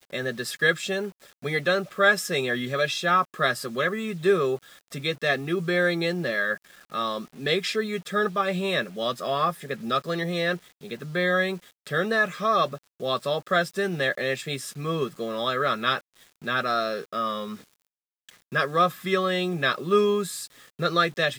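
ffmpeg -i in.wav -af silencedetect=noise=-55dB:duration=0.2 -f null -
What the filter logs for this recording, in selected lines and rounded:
silence_start: 17.87
silence_end: 18.29 | silence_duration: 0.42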